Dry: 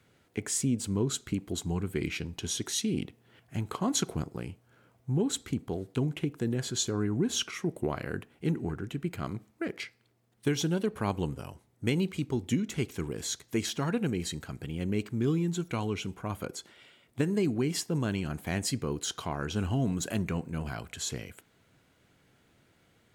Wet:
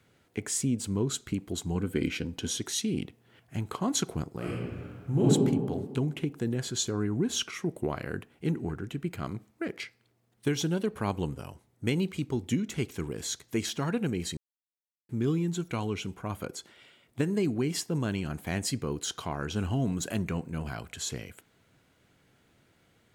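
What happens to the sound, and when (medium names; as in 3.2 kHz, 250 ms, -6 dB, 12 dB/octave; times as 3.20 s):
1.75–2.57 s: small resonant body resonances 260/490/1500/3100 Hz, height 9 dB
4.36–5.28 s: reverb throw, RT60 1.8 s, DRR -7 dB
14.37–15.09 s: mute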